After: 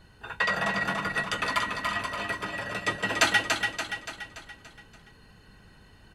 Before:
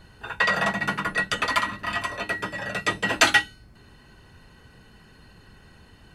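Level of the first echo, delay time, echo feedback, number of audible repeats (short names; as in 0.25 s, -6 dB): -5.0 dB, 0.287 s, 51%, 6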